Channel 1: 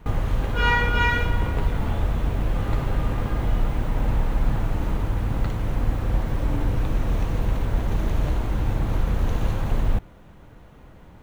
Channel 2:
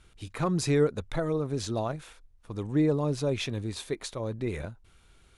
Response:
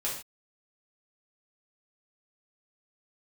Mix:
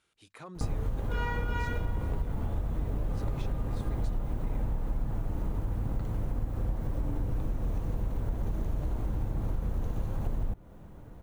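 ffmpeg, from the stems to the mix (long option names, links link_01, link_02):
-filter_complex "[0:a]equalizer=frequency=2700:width=0.48:gain=-10,adelay=550,volume=-0.5dB[link_01];[1:a]highpass=frequency=450:poles=1,alimiter=limit=-24dB:level=0:latency=1:release=17,volume=-10.5dB[link_02];[link_01][link_02]amix=inputs=2:normalize=0,acompressor=threshold=-28dB:ratio=4"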